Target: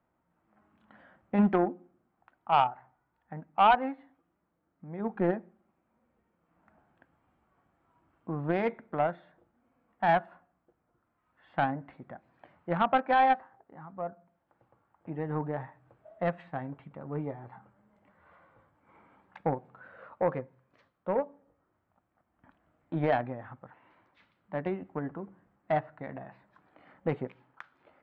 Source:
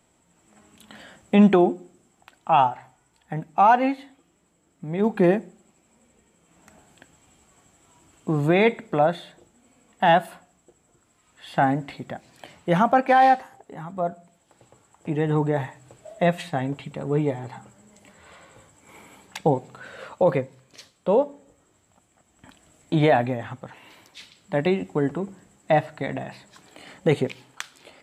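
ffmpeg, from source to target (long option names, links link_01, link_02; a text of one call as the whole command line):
ffmpeg -i in.wav -af "lowpass=frequency=1400:width_type=q:width=1.5,bandreject=frequency=420:width=12,aeval=exprs='0.631*(cos(1*acos(clip(val(0)/0.631,-1,1)))-cos(1*PI/2))+0.112*(cos(3*acos(clip(val(0)/0.631,-1,1)))-cos(3*PI/2))':channel_layout=same,volume=-5.5dB" out.wav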